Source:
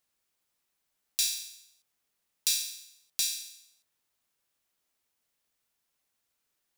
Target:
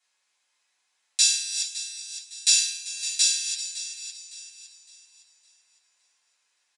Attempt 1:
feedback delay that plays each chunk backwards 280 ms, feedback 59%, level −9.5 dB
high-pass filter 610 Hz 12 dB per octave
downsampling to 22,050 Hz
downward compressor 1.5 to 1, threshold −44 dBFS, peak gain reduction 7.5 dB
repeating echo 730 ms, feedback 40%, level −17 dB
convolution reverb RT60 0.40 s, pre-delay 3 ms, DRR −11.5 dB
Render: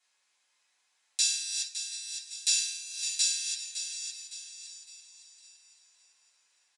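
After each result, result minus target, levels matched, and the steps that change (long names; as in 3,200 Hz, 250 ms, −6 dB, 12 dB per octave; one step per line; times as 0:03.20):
echo 340 ms late; downward compressor: peak gain reduction +7.5 dB
change: repeating echo 390 ms, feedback 40%, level −17 dB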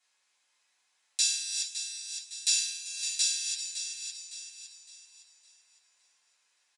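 downward compressor: peak gain reduction +7.5 dB
remove: downward compressor 1.5 to 1, threshold −44 dBFS, peak gain reduction 7.5 dB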